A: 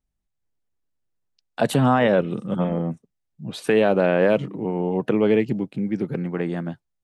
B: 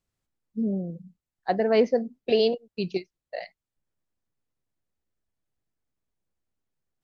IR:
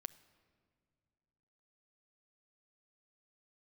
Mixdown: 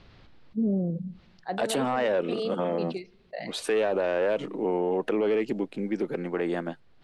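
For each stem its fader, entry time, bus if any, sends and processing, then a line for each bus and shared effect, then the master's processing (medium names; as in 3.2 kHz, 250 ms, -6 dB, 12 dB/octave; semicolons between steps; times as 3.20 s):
+2.5 dB, 0.00 s, no send, Chebyshev band-pass 370–9500 Hz, order 2
-5.0 dB, 0.00 s, send -9 dB, steep low-pass 4.5 kHz 36 dB/octave; level flattener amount 50%; auto duck -11 dB, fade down 0.35 s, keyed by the first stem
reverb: on, RT60 2.2 s, pre-delay 7 ms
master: saturation -9.5 dBFS, distortion -18 dB; peak limiter -18.5 dBFS, peak gain reduction 8.5 dB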